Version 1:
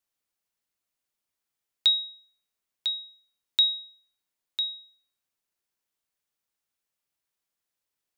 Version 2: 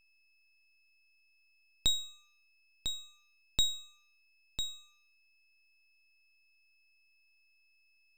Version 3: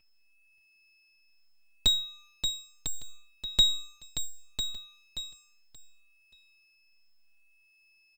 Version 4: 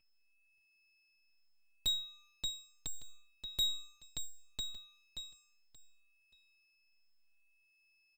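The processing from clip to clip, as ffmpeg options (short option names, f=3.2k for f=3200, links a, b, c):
-af "aeval=exprs='val(0)+0.001*sin(2*PI*2600*n/s)':c=same,lowshelf=f=360:g=8,aeval=exprs='max(val(0),0)':c=same,volume=-3.5dB"
-filter_complex "[0:a]asplit=2[a][b];[b]aecho=0:1:579|1158|1737:0.398|0.0995|0.0249[c];[a][c]amix=inputs=2:normalize=0,asplit=2[d][e];[e]adelay=4,afreqshift=-0.71[f];[d][f]amix=inputs=2:normalize=1,volume=8.5dB"
-af "asoftclip=type=hard:threshold=-20dB,volume=-8dB"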